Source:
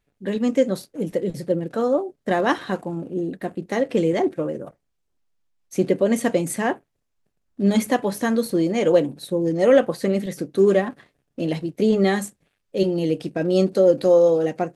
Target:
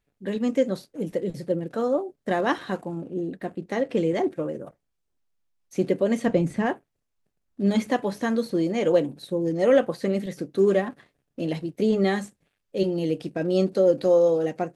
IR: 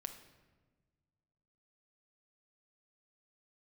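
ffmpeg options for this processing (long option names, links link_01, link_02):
-filter_complex "[0:a]asplit=3[link_01][link_02][link_03];[link_01]afade=type=out:start_time=6.25:duration=0.02[link_04];[link_02]aemphasis=mode=reproduction:type=bsi,afade=type=in:start_time=6.25:duration=0.02,afade=type=out:start_time=6.65:duration=0.02[link_05];[link_03]afade=type=in:start_time=6.65:duration=0.02[link_06];[link_04][link_05][link_06]amix=inputs=3:normalize=0,acrossover=split=6100[link_07][link_08];[link_08]acompressor=threshold=-48dB:ratio=4:attack=1:release=60[link_09];[link_07][link_09]amix=inputs=2:normalize=0,asettb=1/sr,asplit=3[link_10][link_11][link_12];[link_10]atrim=end=3.024[link_13];[link_11]atrim=start=3.02:end=4.15,asetpts=PTS-STARTPTS,afade=type=in:duration=0.004:curve=qsin,afade=type=out:start_time=1.126:duration=0.004:curve=qsin,highshelf=frequency=10000:gain=-8.5[link_14];[link_12]atrim=start=4.146[link_15];[link_13][link_14]acrossfade=duration=0.004:curve1=hsin:curve2=qsin[link_16];[link_16][link_15]acrossfade=duration=0.004:curve1=qsin:curve2=hsin,volume=-3.5dB"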